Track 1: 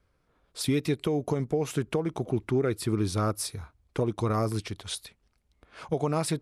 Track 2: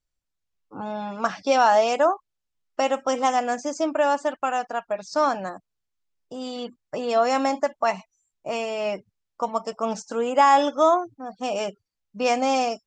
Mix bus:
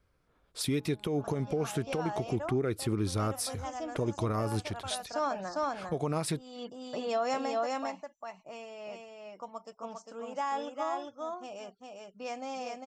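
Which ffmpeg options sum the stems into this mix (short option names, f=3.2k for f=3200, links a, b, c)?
-filter_complex "[0:a]volume=-1.5dB,asplit=2[a][b];[1:a]volume=-7.5dB,afade=t=in:st=4.45:d=0.37:silence=0.421697,afade=t=out:st=7.3:d=0.28:silence=0.334965,asplit=2[c][d];[d]volume=-3.5dB[e];[b]apad=whole_len=567126[f];[c][f]sidechaincompress=threshold=-41dB:ratio=8:attack=16:release=276[g];[e]aecho=0:1:401:1[h];[a][g][h]amix=inputs=3:normalize=0,alimiter=limit=-21.5dB:level=0:latency=1:release=119"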